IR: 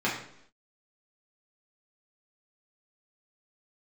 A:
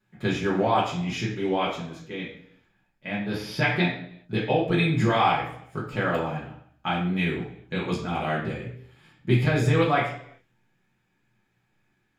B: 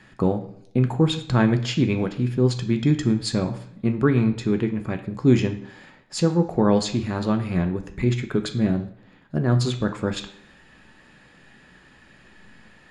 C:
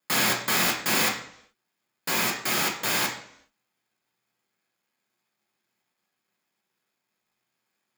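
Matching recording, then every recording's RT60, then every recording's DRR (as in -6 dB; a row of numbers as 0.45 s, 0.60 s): A; 0.70 s, 0.70 s, 0.70 s; -7.0 dB, 5.5 dB, -2.0 dB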